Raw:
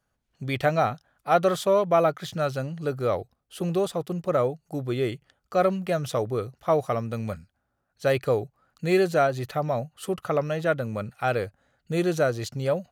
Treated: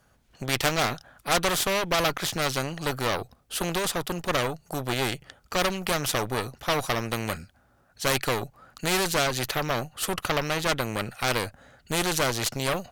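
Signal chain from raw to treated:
harmonic generator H 8 −18 dB, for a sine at −7.5 dBFS
every bin compressed towards the loudest bin 2 to 1

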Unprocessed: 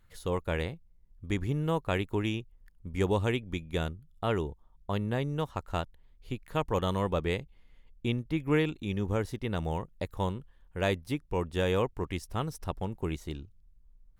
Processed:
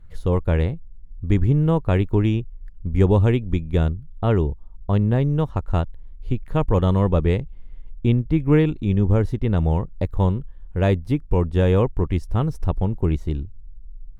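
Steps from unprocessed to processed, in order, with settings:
spectral tilt −3 dB per octave
level +5 dB

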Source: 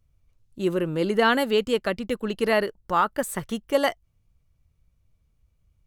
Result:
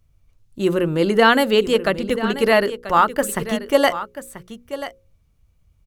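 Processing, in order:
mains-hum notches 60/120/180/240/300/360/420/480/540 Hz
single-tap delay 986 ms −13 dB
level +6.5 dB

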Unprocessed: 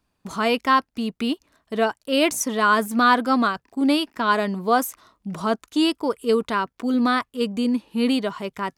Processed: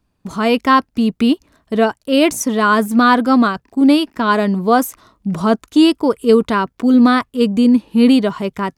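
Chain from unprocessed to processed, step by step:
low-shelf EQ 400 Hz +8.5 dB
automatic gain control gain up to 7.5 dB

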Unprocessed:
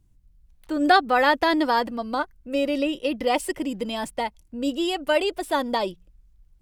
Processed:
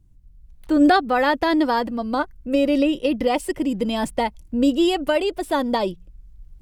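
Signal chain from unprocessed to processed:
camcorder AGC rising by 7 dB per second
low-shelf EQ 410 Hz +8 dB
level −2 dB

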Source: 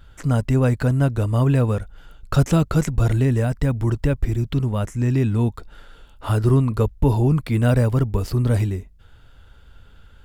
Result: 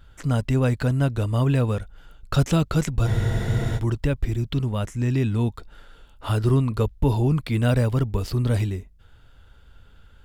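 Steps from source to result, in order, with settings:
dynamic equaliser 3,500 Hz, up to +6 dB, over −49 dBFS, Q 1.1
frozen spectrum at 0:03.08, 0.69 s
level −3 dB

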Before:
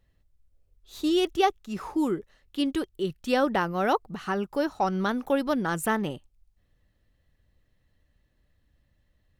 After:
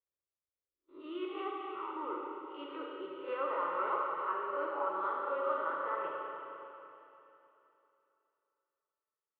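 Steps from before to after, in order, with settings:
peak hold with a rise ahead of every peak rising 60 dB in 0.35 s
high-pass filter 410 Hz 12 dB per octave
noise gate −52 dBFS, range −18 dB
spectral tilt −3 dB per octave, from 0:00.99 +2 dB per octave
brickwall limiter −17 dBFS, peak gain reduction 10 dB
transistor ladder low-pass 1,700 Hz, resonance 45%
phaser with its sweep stopped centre 1,100 Hz, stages 8
four-comb reverb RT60 3.1 s, combs from 31 ms, DRR −2.5 dB

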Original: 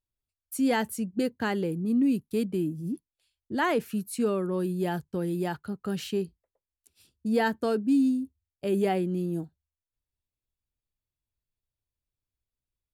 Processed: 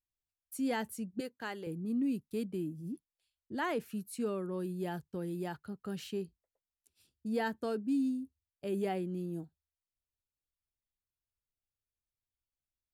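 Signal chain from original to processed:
0:01.20–0:01.67: high-pass filter 590 Hz 6 dB per octave
level −8.5 dB

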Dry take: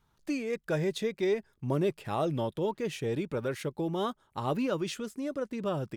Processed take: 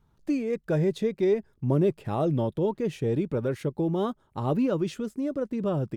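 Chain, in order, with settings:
tilt shelving filter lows +6 dB, about 770 Hz
level +1.5 dB

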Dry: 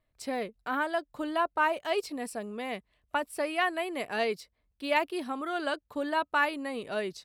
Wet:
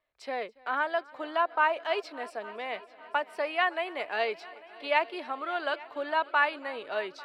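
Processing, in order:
three-way crossover with the lows and the highs turned down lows −19 dB, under 420 Hz, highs −21 dB, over 4,600 Hz
on a send: echo machine with several playback heads 282 ms, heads all three, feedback 55%, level −24 dB
on the sum: level +2 dB

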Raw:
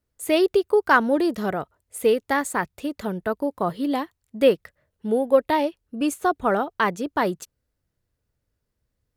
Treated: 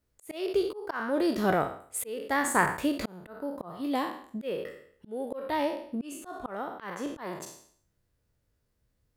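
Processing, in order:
peak hold with a decay on every bin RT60 0.50 s
volume swells 626 ms

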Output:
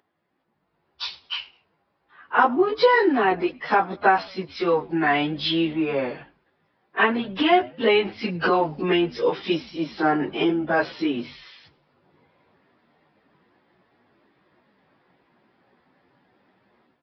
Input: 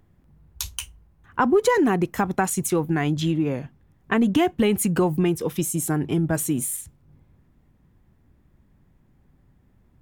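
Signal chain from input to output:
high-pass filter 470 Hz 12 dB per octave
automatic gain control gain up to 13 dB
time stretch by phase vocoder 1.7×
on a send: echo with shifted repeats 105 ms, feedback 33%, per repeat −100 Hz, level −24 dB
on the sum: downsampling to 11,025 Hz

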